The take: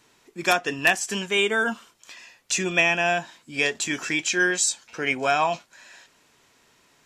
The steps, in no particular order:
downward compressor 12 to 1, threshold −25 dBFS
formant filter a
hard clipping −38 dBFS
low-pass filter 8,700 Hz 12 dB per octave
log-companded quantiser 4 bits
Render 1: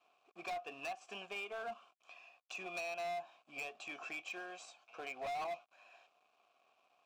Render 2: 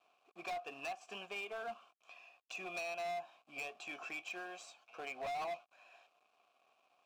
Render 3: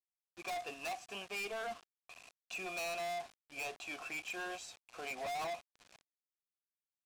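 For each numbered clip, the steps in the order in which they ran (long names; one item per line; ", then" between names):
log-companded quantiser, then low-pass filter, then downward compressor, then formant filter, then hard clipping
low-pass filter, then downward compressor, then log-companded quantiser, then formant filter, then hard clipping
formant filter, then log-companded quantiser, then low-pass filter, then hard clipping, then downward compressor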